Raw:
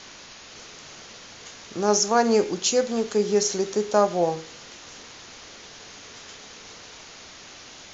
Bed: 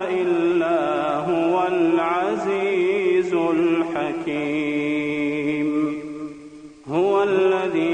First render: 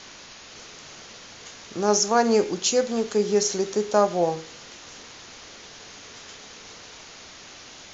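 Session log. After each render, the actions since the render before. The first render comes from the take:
no processing that can be heard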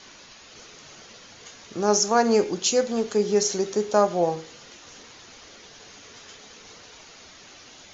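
broadband denoise 6 dB, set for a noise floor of −45 dBFS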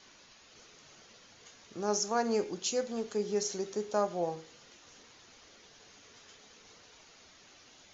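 level −10.5 dB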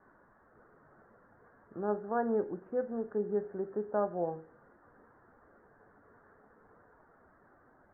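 Butterworth low-pass 1,700 Hz 72 dB per octave
dynamic equaliser 1,100 Hz, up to −4 dB, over −50 dBFS, Q 1.5

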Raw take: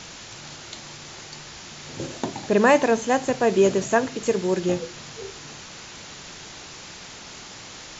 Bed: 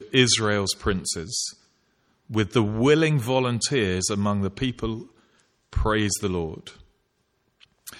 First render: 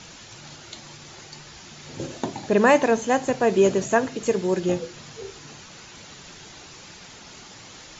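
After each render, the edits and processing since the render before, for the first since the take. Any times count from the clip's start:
broadband denoise 6 dB, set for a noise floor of −41 dBFS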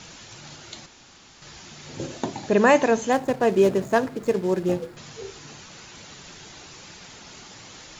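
0:00.86–0:01.42: fill with room tone
0:03.12–0:04.97: running median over 15 samples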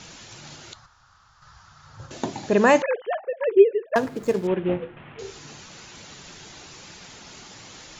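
0:00.73–0:02.11: drawn EQ curve 110 Hz 0 dB, 170 Hz −13 dB, 320 Hz −27 dB, 1,300 Hz +4 dB, 2,300 Hz −17 dB, 4,900 Hz −11 dB, 10,000 Hz −20 dB
0:02.82–0:03.96: three sine waves on the formant tracks
0:04.47–0:05.19: variable-slope delta modulation 16 kbit/s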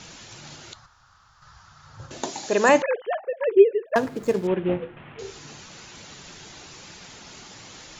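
0:02.23–0:02.69: bass and treble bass −14 dB, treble +10 dB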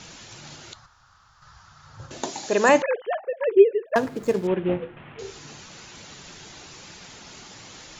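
no processing that can be heard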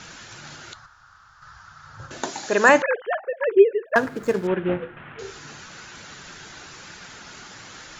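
parametric band 1,500 Hz +9 dB 0.72 octaves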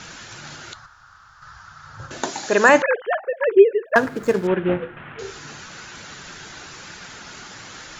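level +3 dB
brickwall limiter −2 dBFS, peak gain reduction 2.5 dB

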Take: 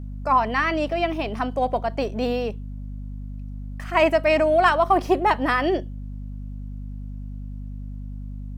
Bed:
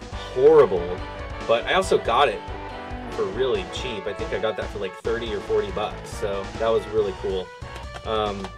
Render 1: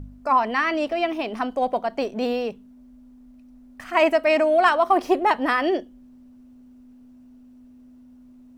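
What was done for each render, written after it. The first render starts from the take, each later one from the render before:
hum removal 50 Hz, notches 4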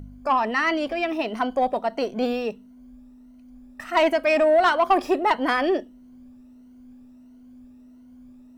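rippled gain that drifts along the octave scale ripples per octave 1.9, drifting +1.5 Hz, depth 9 dB
soft clipping −11 dBFS, distortion −17 dB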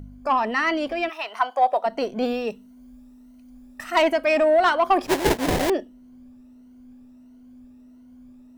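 0:01.08–0:01.85: high-pass with resonance 1,300 Hz → 610 Hz, resonance Q 1.8
0:02.47–0:04.02: high-shelf EQ 3,900 Hz +7 dB
0:05.06–0:05.70: sample-rate reduction 1,300 Hz, jitter 20%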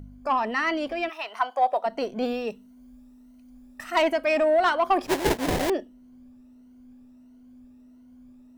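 level −3 dB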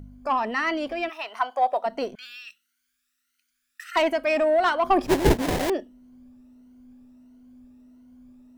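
0:02.15–0:03.96: elliptic high-pass filter 1,400 Hz
0:04.84–0:05.42: low-shelf EQ 290 Hz +11.5 dB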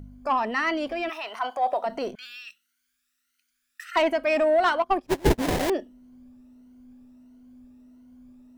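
0:00.96–0:02.12: transient designer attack −5 dB, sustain +5 dB
0:03.85–0:04.32: high-shelf EQ 5,500 Hz −5 dB
0:04.82–0:05.38: expander for the loud parts 2.5 to 1, over −30 dBFS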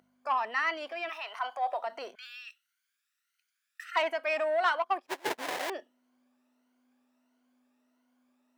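Bessel high-pass filter 1,100 Hz, order 2
high-shelf EQ 3,200 Hz −8.5 dB

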